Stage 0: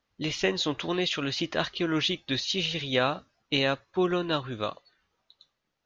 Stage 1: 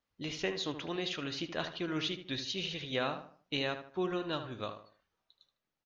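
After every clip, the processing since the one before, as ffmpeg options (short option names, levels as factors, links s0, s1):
-filter_complex "[0:a]asplit=2[s0][s1];[s1]adelay=76,lowpass=f=2300:p=1,volume=0.376,asplit=2[s2][s3];[s3]adelay=76,lowpass=f=2300:p=1,volume=0.37,asplit=2[s4][s5];[s5]adelay=76,lowpass=f=2300:p=1,volume=0.37,asplit=2[s6][s7];[s7]adelay=76,lowpass=f=2300:p=1,volume=0.37[s8];[s0][s2][s4][s6][s8]amix=inputs=5:normalize=0,volume=0.376"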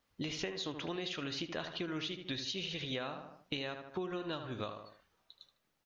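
-af "acompressor=threshold=0.00631:ratio=10,volume=2.51"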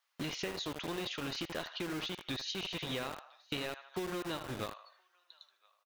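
-filter_complex "[0:a]acrossover=split=740[s0][s1];[s0]acrusher=bits=6:mix=0:aa=0.000001[s2];[s1]aecho=1:1:1018:0.0668[s3];[s2][s3]amix=inputs=2:normalize=0"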